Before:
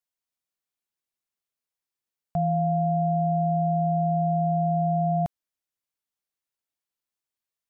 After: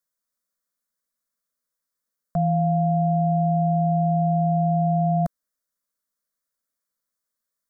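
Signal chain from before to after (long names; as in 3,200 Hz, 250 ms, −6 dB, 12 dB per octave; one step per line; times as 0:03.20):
phaser with its sweep stopped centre 540 Hz, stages 8
level +7 dB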